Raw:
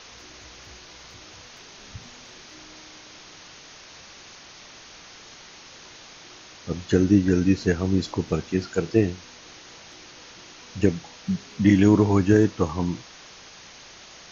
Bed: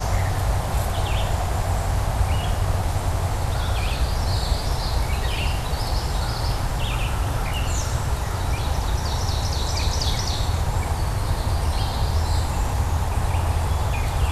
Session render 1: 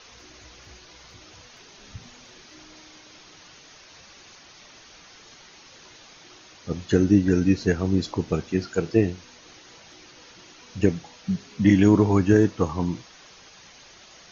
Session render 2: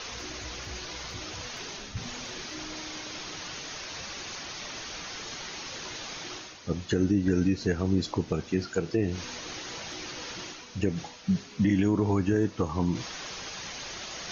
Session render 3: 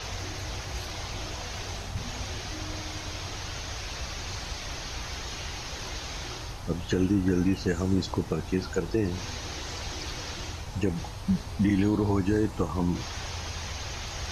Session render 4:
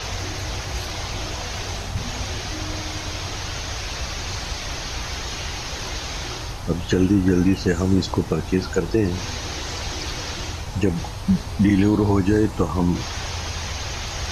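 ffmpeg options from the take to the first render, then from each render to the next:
ffmpeg -i in.wav -af "afftdn=noise_reduction=6:noise_floor=-46" out.wav
ffmpeg -i in.wav -af "alimiter=limit=-15dB:level=0:latency=1:release=142,areverse,acompressor=mode=upward:threshold=-28dB:ratio=2.5,areverse" out.wav
ffmpeg -i in.wav -i bed.wav -filter_complex "[1:a]volume=-16dB[link_01];[0:a][link_01]amix=inputs=2:normalize=0" out.wav
ffmpeg -i in.wav -af "volume=7dB" out.wav

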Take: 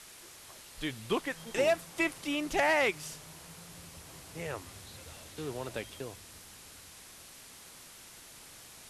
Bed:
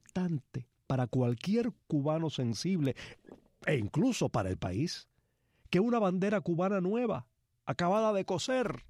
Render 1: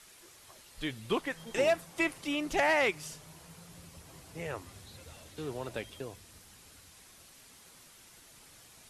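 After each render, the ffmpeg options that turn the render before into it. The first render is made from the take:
ffmpeg -i in.wav -af "afftdn=noise_reduction=6:noise_floor=-52" out.wav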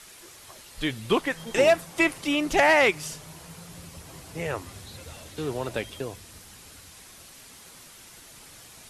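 ffmpeg -i in.wav -af "volume=8dB" out.wav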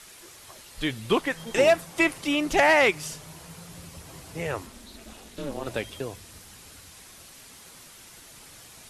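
ffmpeg -i in.wav -filter_complex "[0:a]asettb=1/sr,asplit=3[link_01][link_02][link_03];[link_01]atrim=end=4.664[link_04];[link_02]atrim=start=4.66:end=5.67,asetpts=PTS-STARTPTS,afade=type=in:duration=0.004:curve=qsin,afade=type=out:start_time=1.006:duration=0.004:curve=qsin,aeval=exprs='val(0)*sin(2*PI*140*n/s)':channel_layout=same[link_05];[link_03]atrim=start=5.666[link_06];[link_04][link_05]acrossfade=duration=0.004:curve1=hsin:curve2=qsin[link_07];[link_07][link_06]acrossfade=duration=0.004:curve1=qsin:curve2=hsin" out.wav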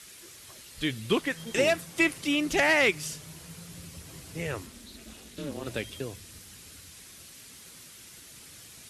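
ffmpeg -i in.wav -af "highpass=49,equalizer=frequency=830:width=0.97:gain=-8.5" out.wav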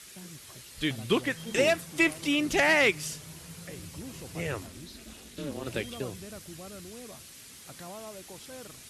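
ffmpeg -i in.wav -i bed.wav -filter_complex "[1:a]volume=-15dB[link_01];[0:a][link_01]amix=inputs=2:normalize=0" out.wav

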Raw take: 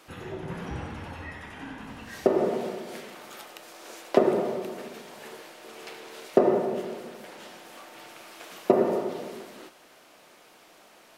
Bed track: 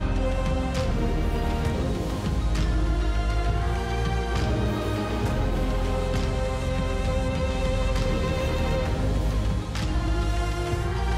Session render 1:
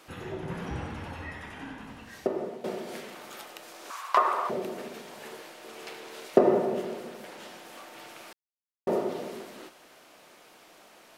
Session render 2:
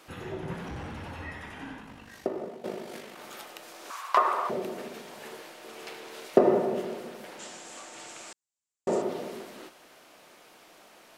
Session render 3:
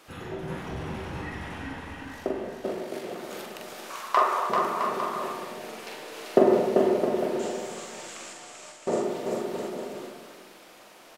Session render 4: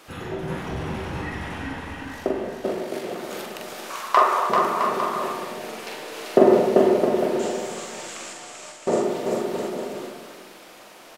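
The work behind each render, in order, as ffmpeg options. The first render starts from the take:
ffmpeg -i in.wav -filter_complex "[0:a]asettb=1/sr,asplit=3[link_01][link_02][link_03];[link_01]atrim=end=3.904[link_04];[link_02]atrim=start=3.9:end=4.5,asetpts=PTS-STARTPTS,afade=type=in:duration=0.004:curve=qsin,afade=type=out:start_time=0.596:duration=0.004:curve=qsin,highpass=frequency=1100:width_type=q:width=9.5[link_05];[link_03]atrim=start=4.496[link_06];[link_04][link_05]acrossfade=duration=0.004:curve1=hsin:curve2=qsin[link_07];[link_07][link_06]acrossfade=duration=0.004:curve1=qsin:curve2=hsin,asplit=4[link_08][link_09][link_10][link_11];[link_08]atrim=end=2.64,asetpts=PTS-STARTPTS,afade=type=out:start_time=1.49:duration=1.15:silence=0.188365[link_12];[link_09]atrim=start=2.64:end=8.33,asetpts=PTS-STARTPTS,afade=type=in:duration=0.004:curve=hsin:silence=0.188365,afade=type=out:start_time=5.686:duration=0.004:curve=hsin[link_13];[link_10]atrim=start=8.33:end=8.87,asetpts=PTS-STARTPTS,volume=0[link_14];[link_11]atrim=start=8.87,asetpts=PTS-STARTPTS,afade=type=in:duration=0.004:curve=hsin[link_15];[link_12][link_13][link_14][link_15]concat=n=4:v=0:a=1" out.wav
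ffmpeg -i in.wav -filter_complex "[0:a]asettb=1/sr,asplit=3[link_01][link_02][link_03];[link_01]atrim=end=0.544[link_04];[link_02]atrim=start=0.54:end=1.18,asetpts=PTS-STARTPTS,afade=type=in:duration=0.004:curve=qsin,afade=type=out:start_time=0.636:duration=0.004:curve=qsin,asoftclip=type=hard:threshold=-35dB[link_05];[link_03]atrim=start=1.176[link_06];[link_04][link_05]acrossfade=duration=0.004:curve1=hsin:curve2=qsin[link_07];[link_07][link_06]acrossfade=duration=0.004:curve1=qsin:curve2=hsin,asettb=1/sr,asplit=3[link_08][link_09][link_10];[link_08]atrim=end=1.804[link_11];[link_09]atrim=start=1.8:end=3.19,asetpts=PTS-STARTPTS,afade=type=in:duration=0.004:curve=qsin,afade=type=out:start_time=1.386:duration=0.004:curve=qsin,tremolo=f=50:d=0.519[link_12];[link_10]atrim=start=3.186[link_13];[link_11][link_12]acrossfade=duration=0.004:curve1=hsin:curve2=qsin[link_14];[link_14][link_13]acrossfade=duration=0.004:curve1=qsin:curve2=hsin,asettb=1/sr,asplit=3[link_15][link_16][link_17];[link_15]atrim=end=7.394[link_18];[link_16]atrim=start=7.39:end=9.02,asetpts=PTS-STARTPTS,afade=type=in:duration=0.004:curve=qsin,afade=type=out:start_time=1.626:duration=0.004:curve=qsin,lowpass=frequency=7500:width_type=q:width=5.6[link_19];[link_17]atrim=start=9.016[link_20];[link_18][link_19]acrossfade=duration=0.004:curve1=hsin:curve2=qsin[link_21];[link_21][link_20]acrossfade=duration=0.004:curve1=qsin:curve2=hsin" out.wav
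ffmpeg -i in.wav -filter_complex "[0:a]asplit=2[link_01][link_02];[link_02]adelay=44,volume=-4dB[link_03];[link_01][link_03]amix=inputs=2:normalize=0,asplit=2[link_04][link_05];[link_05]aecho=0:1:390|663|854.1|987.9|1082:0.631|0.398|0.251|0.158|0.1[link_06];[link_04][link_06]amix=inputs=2:normalize=0" out.wav
ffmpeg -i in.wav -af "volume=5dB,alimiter=limit=-1dB:level=0:latency=1" out.wav

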